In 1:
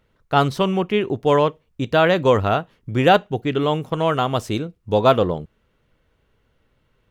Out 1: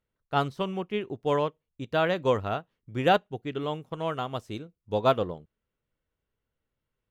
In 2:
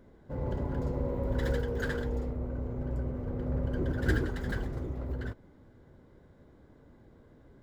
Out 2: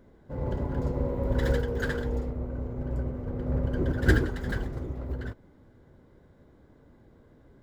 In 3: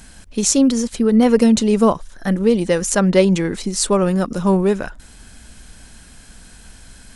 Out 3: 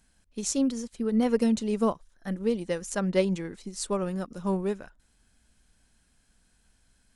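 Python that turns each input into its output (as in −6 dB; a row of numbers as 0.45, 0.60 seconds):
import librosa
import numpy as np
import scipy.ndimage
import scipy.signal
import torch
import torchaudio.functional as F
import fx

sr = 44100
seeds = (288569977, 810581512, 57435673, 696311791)

y = fx.upward_expand(x, sr, threshold_db=-36.0, expansion=1.5)
y = y * 10.0 ** (-30 / 20.0) / np.sqrt(np.mean(np.square(y)))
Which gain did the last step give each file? −7.0, +7.5, −10.0 decibels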